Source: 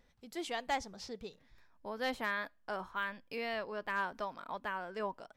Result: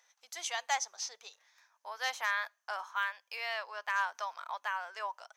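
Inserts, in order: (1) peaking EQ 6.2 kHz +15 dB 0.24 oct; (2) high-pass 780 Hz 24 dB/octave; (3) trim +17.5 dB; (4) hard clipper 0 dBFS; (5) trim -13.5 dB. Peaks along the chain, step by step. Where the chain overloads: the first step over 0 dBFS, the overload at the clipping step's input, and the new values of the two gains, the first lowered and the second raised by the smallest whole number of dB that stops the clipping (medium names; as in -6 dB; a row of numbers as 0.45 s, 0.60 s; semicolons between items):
-22.5 dBFS, -22.0 dBFS, -4.5 dBFS, -4.5 dBFS, -18.0 dBFS; nothing clips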